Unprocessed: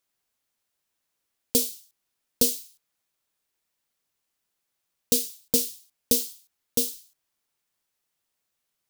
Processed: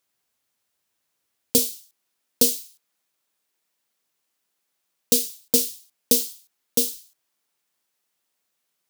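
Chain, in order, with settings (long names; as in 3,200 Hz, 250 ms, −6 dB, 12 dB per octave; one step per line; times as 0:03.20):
high-pass filter 59 Hz, from 0:01.58 160 Hz
level +3.5 dB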